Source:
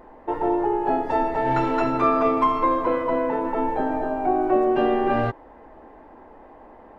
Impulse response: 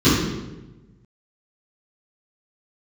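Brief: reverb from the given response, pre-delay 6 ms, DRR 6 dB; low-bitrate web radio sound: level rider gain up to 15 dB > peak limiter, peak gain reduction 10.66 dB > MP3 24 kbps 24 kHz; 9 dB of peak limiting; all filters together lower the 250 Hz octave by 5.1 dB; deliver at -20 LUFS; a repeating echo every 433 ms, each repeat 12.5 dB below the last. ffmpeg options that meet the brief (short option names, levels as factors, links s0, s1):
-filter_complex "[0:a]equalizer=f=250:t=o:g=-7.5,alimiter=limit=0.119:level=0:latency=1,aecho=1:1:433|866|1299:0.237|0.0569|0.0137,asplit=2[s0][s1];[1:a]atrim=start_sample=2205,adelay=6[s2];[s1][s2]afir=irnorm=-1:irlink=0,volume=0.0376[s3];[s0][s3]amix=inputs=2:normalize=0,dynaudnorm=m=5.62,alimiter=limit=0.0708:level=0:latency=1,volume=3.76" -ar 24000 -c:a libmp3lame -b:a 24k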